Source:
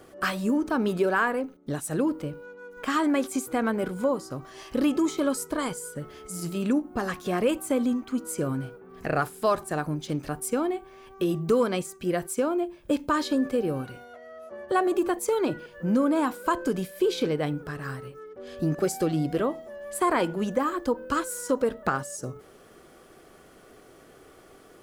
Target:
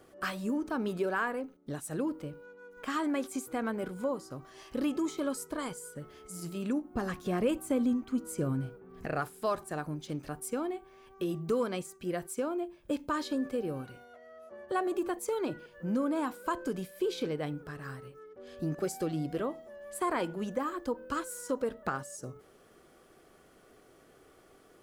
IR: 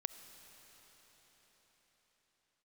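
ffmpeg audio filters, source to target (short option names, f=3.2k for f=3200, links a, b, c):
-filter_complex "[0:a]asettb=1/sr,asplit=3[a][b][c];[a]atrim=end=6.944[d];[b]atrim=start=6.94:end=9.06,asetpts=PTS-STARTPTS,afade=t=in:d=0.004:c=qsin,afade=t=out:st=2.116:d=0.004:c=qsin,lowshelf=f=290:g=8[e];[c]atrim=start=9.056[f];[d][e]acrossfade=d=0.004:c1=hsin:c2=qsin[g];[g][f]acrossfade=d=0.004:c1=qsin:c2=hsin,volume=-7.5dB"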